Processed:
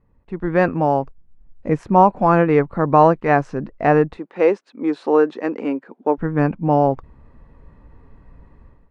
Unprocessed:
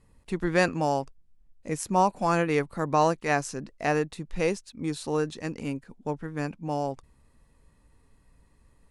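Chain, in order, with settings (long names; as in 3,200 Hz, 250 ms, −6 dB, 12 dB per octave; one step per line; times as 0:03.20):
low-pass filter 1,500 Hz 12 dB per octave
automatic gain control gain up to 15 dB
0:04.17–0:06.18: high-pass filter 280 Hz 24 dB per octave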